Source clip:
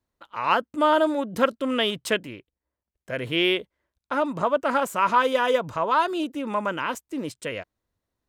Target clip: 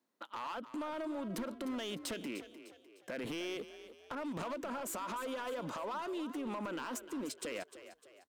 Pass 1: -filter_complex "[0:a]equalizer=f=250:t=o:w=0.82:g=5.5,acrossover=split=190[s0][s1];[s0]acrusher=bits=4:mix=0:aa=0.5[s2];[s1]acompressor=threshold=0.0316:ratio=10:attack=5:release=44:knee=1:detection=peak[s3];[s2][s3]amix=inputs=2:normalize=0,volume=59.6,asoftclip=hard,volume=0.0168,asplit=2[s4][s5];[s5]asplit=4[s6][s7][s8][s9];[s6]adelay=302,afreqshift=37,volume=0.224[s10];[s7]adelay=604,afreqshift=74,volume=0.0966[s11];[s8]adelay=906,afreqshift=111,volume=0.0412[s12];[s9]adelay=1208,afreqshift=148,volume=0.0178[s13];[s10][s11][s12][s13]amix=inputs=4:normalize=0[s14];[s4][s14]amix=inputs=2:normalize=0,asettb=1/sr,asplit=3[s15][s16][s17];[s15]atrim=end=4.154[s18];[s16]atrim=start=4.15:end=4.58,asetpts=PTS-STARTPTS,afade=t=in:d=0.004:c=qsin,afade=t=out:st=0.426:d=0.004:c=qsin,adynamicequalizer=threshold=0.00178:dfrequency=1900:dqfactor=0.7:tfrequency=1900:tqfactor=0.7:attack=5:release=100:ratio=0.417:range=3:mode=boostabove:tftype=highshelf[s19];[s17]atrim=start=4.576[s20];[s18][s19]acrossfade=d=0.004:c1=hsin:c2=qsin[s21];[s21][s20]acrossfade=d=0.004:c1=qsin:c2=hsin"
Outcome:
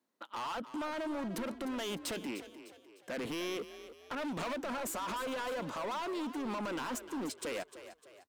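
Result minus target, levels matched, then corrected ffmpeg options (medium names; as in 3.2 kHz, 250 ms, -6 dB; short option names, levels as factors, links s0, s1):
compression: peak gain reduction -7 dB
-filter_complex "[0:a]equalizer=f=250:t=o:w=0.82:g=5.5,acrossover=split=190[s0][s1];[s0]acrusher=bits=4:mix=0:aa=0.5[s2];[s1]acompressor=threshold=0.0133:ratio=10:attack=5:release=44:knee=1:detection=peak[s3];[s2][s3]amix=inputs=2:normalize=0,volume=59.6,asoftclip=hard,volume=0.0168,asplit=2[s4][s5];[s5]asplit=4[s6][s7][s8][s9];[s6]adelay=302,afreqshift=37,volume=0.224[s10];[s7]adelay=604,afreqshift=74,volume=0.0966[s11];[s8]adelay=906,afreqshift=111,volume=0.0412[s12];[s9]adelay=1208,afreqshift=148,volume=0.0178[s13];[s10][s11][s12][s13]amix=inputs=4:normalize=0[s14];[s4][s14]amix=inputs=2:normalize=0,asettb=1/sr,asplit=3[s15][s16][s17];[s15]atrim=end=4.154[s18];[s16]atrim=start=4.15:end=4.58,asetpts=PTS-STARTPTS,afade=t=in:d=0.004:c=qsin,afade=t=out:st=0.426:d=0.004:c=qsin,adynamicequalizer=threshold=0.00178:dfrequency=1900:dqfactor=0.7:tfrequency=1900:tqfactor=0.7:attack=5:release=100:ratio=0.417:range=3:mode=boostabove:tftype=highshelf[s19];[s17]atrim=start=4.576[s20];[s18][s19]acrossfade=d=0.004:c1=hsin:c2=qsin[s21];[s21][s20]acrossfade=d=0.004:c1=qsin:c2=hsin"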